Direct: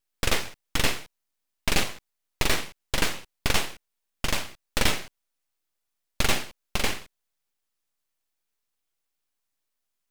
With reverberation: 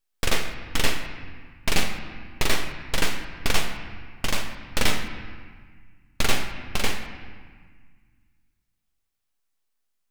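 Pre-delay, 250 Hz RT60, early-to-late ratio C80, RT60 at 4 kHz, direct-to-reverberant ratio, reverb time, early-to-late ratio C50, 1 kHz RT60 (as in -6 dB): 3 ms, 2.2 s, 8.5 dB, 1.3 s, 5.5 dB, 1.6 s, 7.5 dB, 1.7 s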